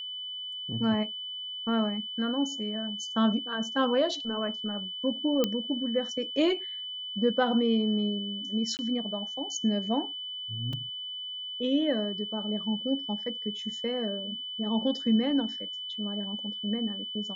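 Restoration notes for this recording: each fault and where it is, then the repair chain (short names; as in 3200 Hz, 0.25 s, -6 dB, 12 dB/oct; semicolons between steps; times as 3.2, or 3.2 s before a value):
tone 3000 Hz -35 dBFS
5.44 pop -12 dBFS
8.77–8.79 gap 19 ms
10.73 gap 3.4 ms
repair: de-click; notch 3000 Hz, Q 30; interpolate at 8.77, 19 ms; interpolate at 10.73, 3.4 ms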